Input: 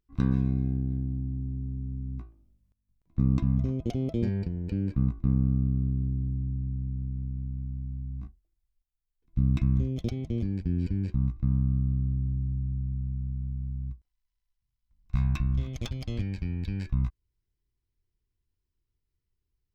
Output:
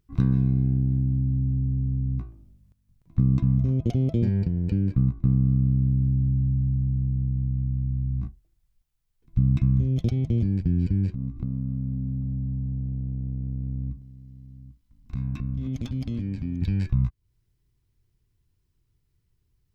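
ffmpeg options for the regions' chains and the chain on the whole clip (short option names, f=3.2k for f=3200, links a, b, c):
-filter_complex "[0:a]asettb=1/sr,asplit=3[a][b][c];[a]atrim=end=11.134[d];[b]atrim=start=11.13:end=16.62,asetpts=PTS-STARTPTS,afade=t=in:d=0.004:c=qsin,afade=t=out:st=5.486:d=0.004:c=qsin,equalizer=f=260:t=o:w=0.67:g=13.5,acompressor=threshold=-38dB:ratio=6:attack=3.2:release=140:knee=1:detection=peak,aecho=1:1:794:0.141,atrim=end_sample=242109[e];[c]atrim=start=16.616[f];[d][e]acrossfade=d=0.004:c1=hsin:c2=qsin[g];[g][f]acrossfade=d=0.004:c1=qsin:c2=hsin,equalizer=f=130:t=o:w=1.4:g=8.5,acompressor=threshold=-34dB:ratio=2,volume=8dB"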